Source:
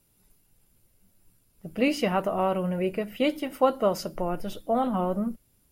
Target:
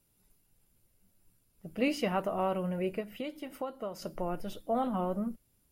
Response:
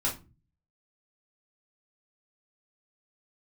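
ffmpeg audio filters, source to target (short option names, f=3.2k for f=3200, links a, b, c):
-filter_complex "[0:a]asettb=1/sr,asplit=3[a][b][c];[a]atrim=end=3.004[d];[b]atrim=start=3:end=4.02,asetpts=PTS-STARTPTS,afade=t=in:d=0.004:c=qsin,afade=t=out:st=1.016:d=0.004:c=qsin,acompressor=threshold=-32dB:ratio=3[e];[c]atrim=start=4.016[f];[d][e]acrossfade=d=0.004:c1=hsin:c2=qsin[g];[g][f]acrossfade=d=0.004:c1=qsin:c2=hsin,volume=-5.5dB"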